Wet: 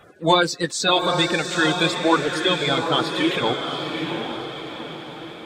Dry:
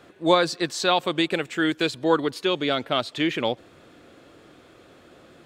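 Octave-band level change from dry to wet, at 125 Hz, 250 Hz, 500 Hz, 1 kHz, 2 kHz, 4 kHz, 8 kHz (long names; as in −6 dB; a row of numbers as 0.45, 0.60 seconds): +6.5, +2.0, +2.0, +4.5, +5.5, +6.0, +7.0 decibels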